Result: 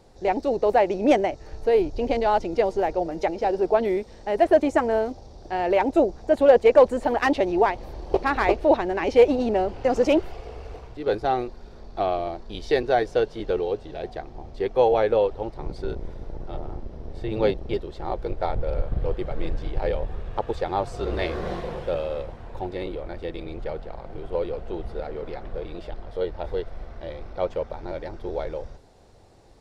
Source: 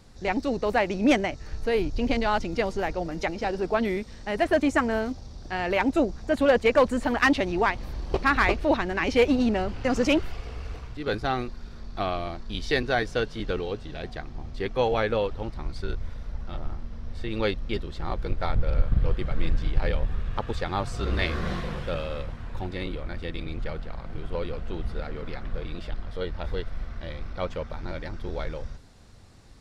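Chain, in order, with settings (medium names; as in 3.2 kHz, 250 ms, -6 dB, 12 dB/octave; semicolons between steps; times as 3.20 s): 15.56–17.74 s: octave divider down 1 oct, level +3 dB; high-order bell 550 Hz +10 dB; trim -4 dB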